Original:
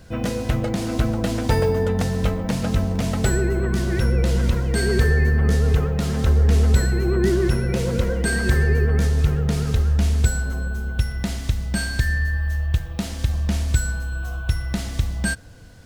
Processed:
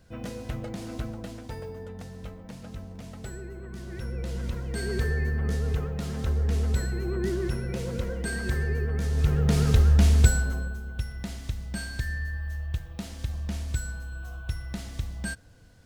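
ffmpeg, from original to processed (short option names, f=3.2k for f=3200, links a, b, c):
-af "volume=7.5dB,afade=t=out:st=0.91:d=0.58:silence=0.446684,afade=t=in:st=3.66:d=1.36:silence=0.334965,afade=t=in:st=9.03:d=0.6:silence=0.316228,afade=t=out:st=10.23:d=0.57:silence=0.298538"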